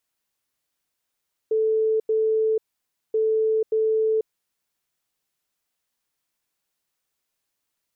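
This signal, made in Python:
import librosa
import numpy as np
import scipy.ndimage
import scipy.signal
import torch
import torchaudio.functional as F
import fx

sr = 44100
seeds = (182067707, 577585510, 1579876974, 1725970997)

y = fx.beep_pattern(sr, wave='sine', hz=439.0, on_s=0.49, off_s=0.09, beeps=2, pause_s=0.56, groups=2, level_db=-18.0)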